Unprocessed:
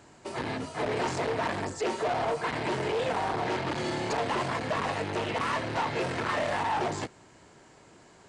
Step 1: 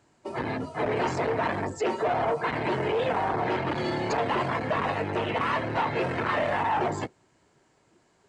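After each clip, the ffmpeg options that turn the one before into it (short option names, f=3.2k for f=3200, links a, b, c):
-af "afftdn=nr=13:nf=-40,volume=3dB"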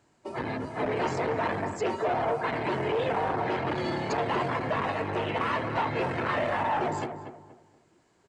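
-filter_complex "[0:a]asplit=2[a][b];[b]adelay=238,lowpass=f=1.6k:p=1,volume=-8dB,asplit=2[c][d];[d]adelay=238,lowpass=f=1.6k:p=1,volume=0.33,asplit=2[e][f];[f]adelay=238,lowpass=f=1.6k:p=1,volume=0.33,asplit=2[g][h];[h]adelay=238,lowpass=f=1.6k:p=1,volume=0.33[i];[a][c][e][g][i]amix=inputs=5:normalize=0,volume=-2dB"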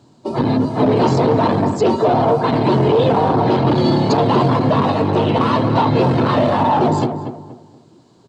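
-af "equalizer=f=125:t=o:w=1:g=12,equalizer=f=250:t=o:w=1:g=11,equalizer=f=500:t=o:w=1:g=4,equalizer=f=1k:t=o:w=1:g=6,equalizer=f=2k:t=o:w=1:g=-9,equalizer=f=4k:t=o:w=1:g=12,volume=6dB"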